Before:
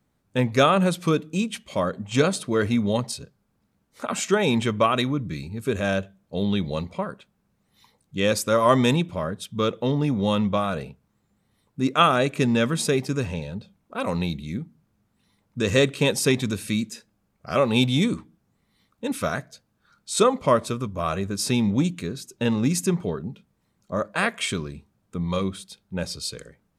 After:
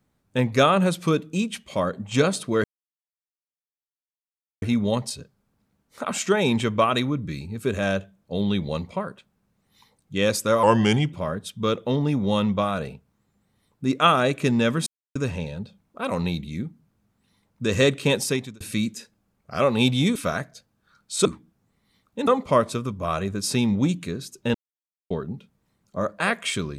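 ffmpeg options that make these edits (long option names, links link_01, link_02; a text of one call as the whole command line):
ffmpeg -i in.wav -filter_complex "[0:a]asplit=12[link_01][link_02][link_03][link_04][link_05][link_06][link_07][link_08][link_09][link_10][link_11][link_12];[link_01]atrim=end=2.64,asetpts=PTS-STARTPTS,afade=type=out:start_time=2.636:duration=0.004:curve=hsin,apad=pad_dur=1.98[link_13];[link_02]atrim=start=2.64:end=8.654,asetpts=PTS-STARTPTS,afade=type=in:duration=0.004:curve=hsin[link_14];[link_03]atrim=start=8.65:end=9.08,asetpts=PTS-STARTPTS,asetrate=38367,aresample=44100[link_15];[link_04]atrim=start=9.076:end=12.82,asetpts=PTS-STARTPTS,afade=type=out:start_time=3.74:duration=0.004:curve=hsin[link_16];[link_05]atrim=start=12.82:end=13.11,asetpts=PTS-STARTPTS,volume=0[link_17];[link_06]atrim=start=13.11:end=16.56,asetpts=PTS-STARTPTS,afade=type=in:duration=0.004:curve=hsin,afade=type=out:start_time=3.01:duration=0.44[link_18];[link_07]atrim=start=16.56:end=18.112,asetpts=PTS-STARTPTS,afade=type=in:duration=0.004:curve=hsin[link_19];[link_08]atrim=start=19.128:end=20.232[link_20];[link_09]atrim=start=18.108:end=19.132[link_21];[link_10]atrim=start=20.228:end=22.5,asetpts=PTS-STARTPTS,afade=type=out:start_time=2.268:duration=0.004:curve=hsin[link_22];[link_11]atrim=start=22.5:end=23.06,asetpts=PTS-STARTPTS,volume=0[link_23];[link_12]atrim=start=23.06,asetpts=PTS-STARTPTS,afade=type=in:duration=0.004:curve=hsin[link_24];[link_13][link_14]concat=n=2:v=0:a=1[link_25];[link_25][link_15]acrossfade=duration=0.004:curve1=hsin:curve2=hsin[link_26];[link_16][link_17][link_18][link_19]concat=n=4:v=0:a=1[link_27];[link_26][link_27]acrossfade=duration=0.004:curve1=hsin:curve2=hsin[link_28];[link_28][link_20]acrossfade=duration=0.004:curve1=hsin:curve2=hsin[link_29];[link_29][link_21]acrossfade=duration=0.004:curve1=hsin:curve2=hsin[link_30];[link_22][link_23][link_24]concat=n=3:v=0:a=1[link_31];[link_30][link_31]acrossfade=duration=0.004:curve1=hsin:curve2=hsin" out.wav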